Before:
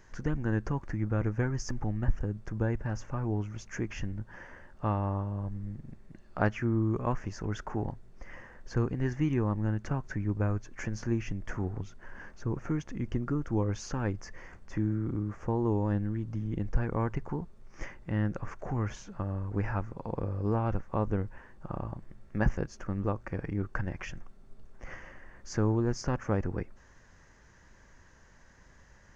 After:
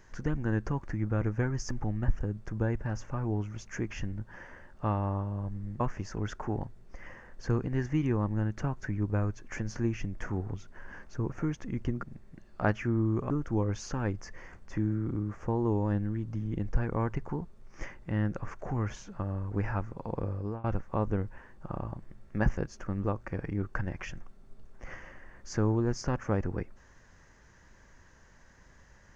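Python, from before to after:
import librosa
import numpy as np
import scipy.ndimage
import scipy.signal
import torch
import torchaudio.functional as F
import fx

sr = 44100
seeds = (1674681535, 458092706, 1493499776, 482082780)

y = fx.edit(x, sr, fx.move(start_s=5.8, length_s=1.27, to_s=13.3),
    fx.fade_out_to(start_s=20.31, length_s=0.33, floor_db=-21.0), tone=tone)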